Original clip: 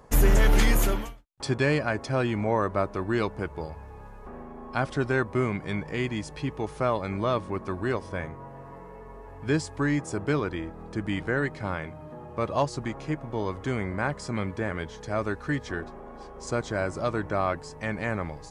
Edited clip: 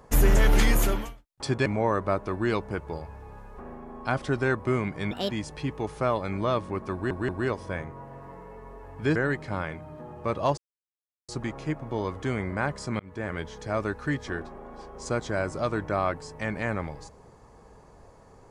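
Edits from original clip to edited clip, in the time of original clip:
1.66–2.34 cut
5.79–6.1 speed 159%
7.72 stutter 0.18 s, 3 plays
9.59–11.28 cut
12.7 insert silence 0.71 s
14.41–14.88 fade in equal-power

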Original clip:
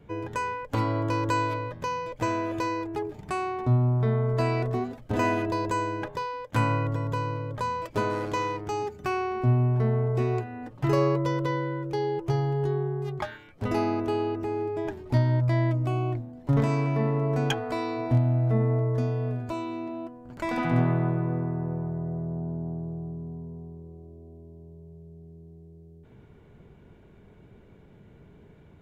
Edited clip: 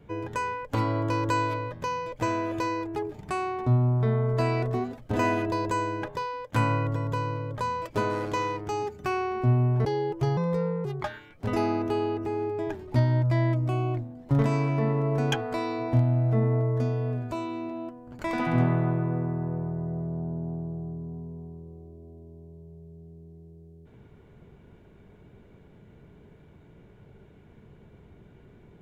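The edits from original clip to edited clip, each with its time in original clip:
9.85–11.92 cut
12.44–13.03 speed 123%

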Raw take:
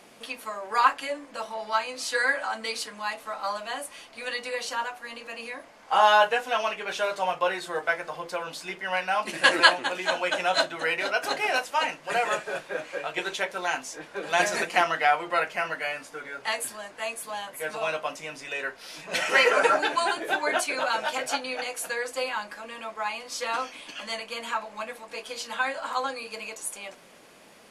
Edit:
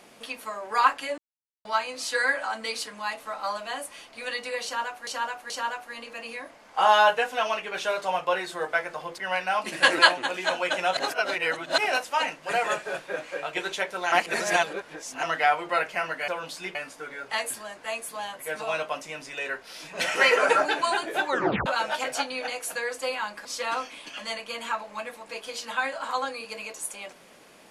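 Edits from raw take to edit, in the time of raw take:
1.18–1.65 mute
4.64–5.07 loop, 3 plays
8.32–8.79 move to 15.89
10.58–11.39 reverse
13.73–14.84 reverse
20.43 tape stop 0.37 s
22.59–23.27 cut

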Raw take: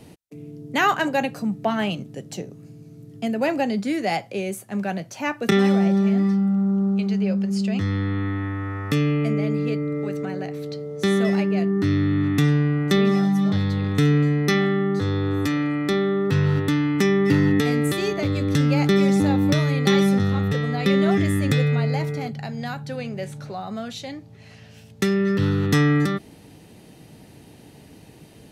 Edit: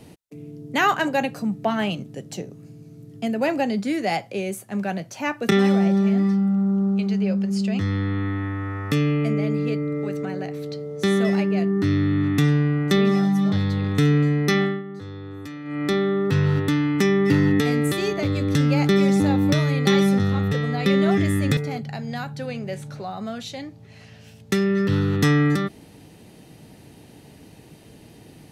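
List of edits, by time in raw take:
14.62–15.85 dip -13 dB, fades 0.21 s
21.57–22.07 cut

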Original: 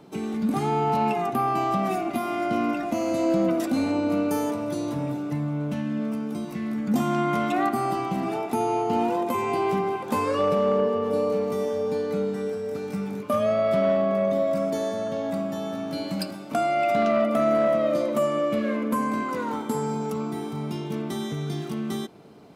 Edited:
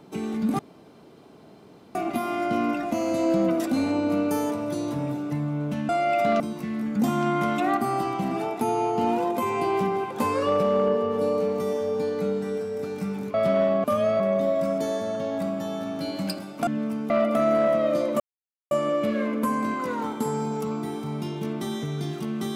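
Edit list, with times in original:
0.59–1.95 room tone
5.89–6.32 swap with 16.59–17.1
13.26–13.62 move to 14.12
18.2 insert silence 0.51 s

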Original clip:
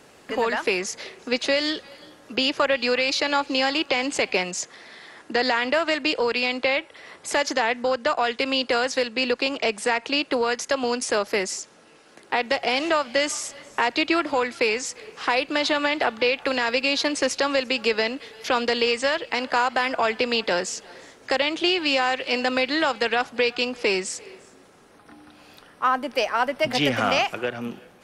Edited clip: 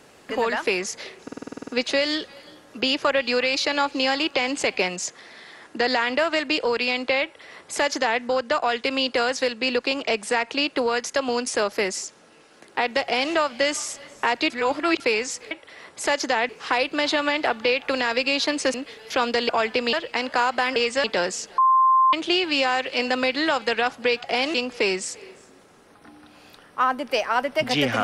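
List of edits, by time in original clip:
1.23 stutter 0.05 s, 10 plays
6.78–7.76 copy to 15.06
12.58–12.88 copy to 23.58
14.05–14.55 reverse
17.31–18.08 cut
18.83–19.11 swap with 19.94–20.38
20.92–21.47 bleep 1050 Hz -13.5 dBFS

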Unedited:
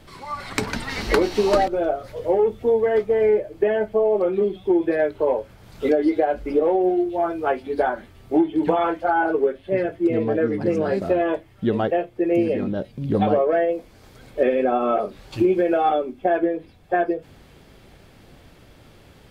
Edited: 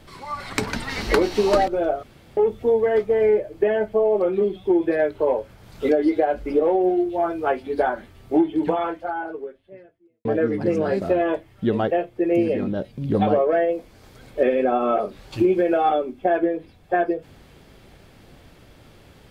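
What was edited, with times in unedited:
2.03–2.37 room tone
8.5–10.25 fade out quadratic

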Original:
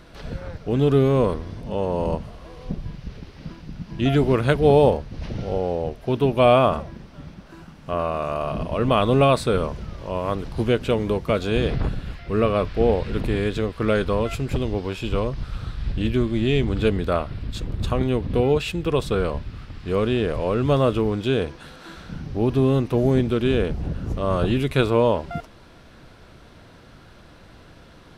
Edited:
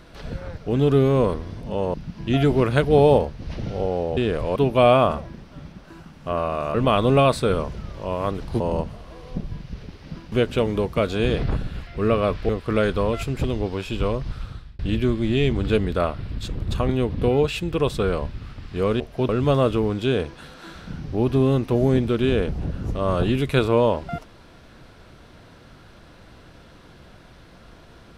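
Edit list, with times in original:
1.94–3.66 move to 10.64
5.89–6.18 swap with 20.12–20.51
8.36–8.78 cut
12.81–13.61 cut
15.45–15.91 fade out

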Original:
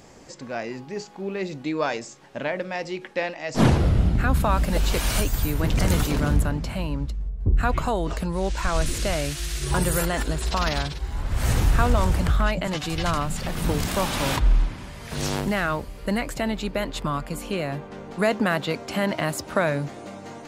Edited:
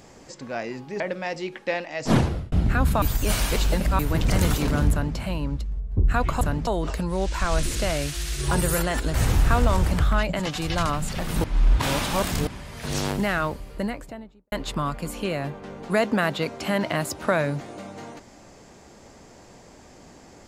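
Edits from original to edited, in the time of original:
1–2.49 cut
3.57–4.01 fade out
4.51–5.48 reverse
6.4–6.66 copy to 7.9
10.37–11.42 cut
13.72–14.75 reverse
15.76–16.8 studio fade out

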